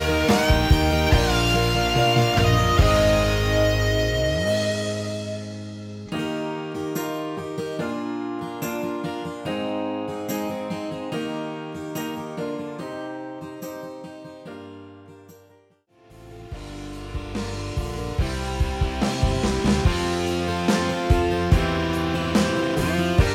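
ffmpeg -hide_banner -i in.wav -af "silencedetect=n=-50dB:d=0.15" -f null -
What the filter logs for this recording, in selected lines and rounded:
silence_start: 15.72
silence_end: 15.95 | silence_duration: 0.24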